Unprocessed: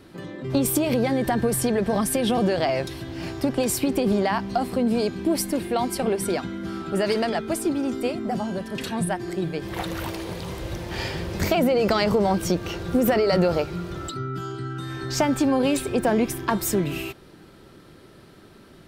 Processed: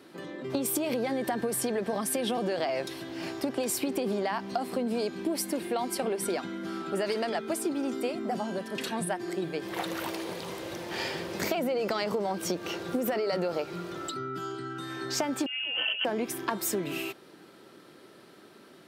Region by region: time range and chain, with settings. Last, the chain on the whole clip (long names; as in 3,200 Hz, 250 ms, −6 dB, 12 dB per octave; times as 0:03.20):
0:15.46–0:16.05: parametric band 170 Hz +7.5 dB 0.94 octaves + compressor whose output falls as the input rises −28 dBFS + voice inversion scrambler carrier 3,100 Hz
whole clip: high-pass filter 250 Hz 12 dB per octave; downward compressor, threshold −24 dBFS; level −2 dB